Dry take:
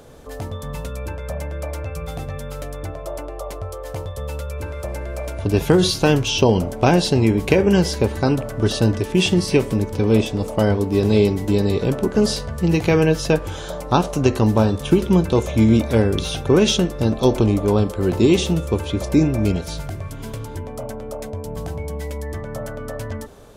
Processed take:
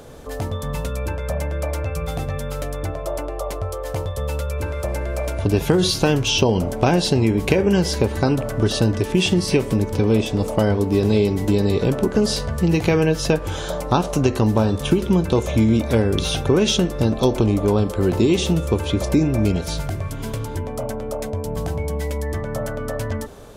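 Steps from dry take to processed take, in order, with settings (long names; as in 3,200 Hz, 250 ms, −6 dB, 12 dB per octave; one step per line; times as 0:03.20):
downward compressor 2.5 to 1, threshold −19 dBFS, peak gain reduction 7 dB
level +3.5 dB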